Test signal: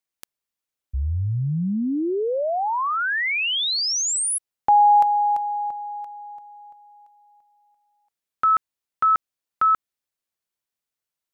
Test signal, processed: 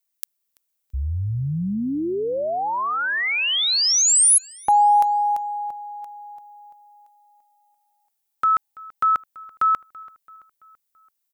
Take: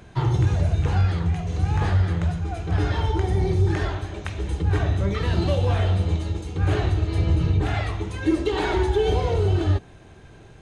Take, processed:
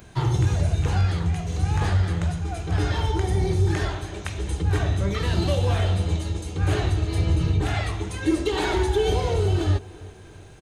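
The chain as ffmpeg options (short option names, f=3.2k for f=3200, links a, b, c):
-filter_complex "[0:a]aemphasis=mode=production:type=50kf,asplit=2[a][b];[b]adelay=334,lowpass=f=4.5k:p=1,volume=-21dB,asplit=2[c][d];[d]adelay=334,lowpass=f=4.5k:p=1,volume=0.52,asplit=2[e][f];[f]adelay=334,lowpass=f=4.5k:p=1,volume=0.52,asplit=2[g][h];[h]adelay=334,lowpass=f=4.5k:p=1,volume=0.52[i];[c][e][g][i]amix=inputs=4:normalize=0[j];[a][j]amix=inputs=2:normalize=0,volume=-1dB"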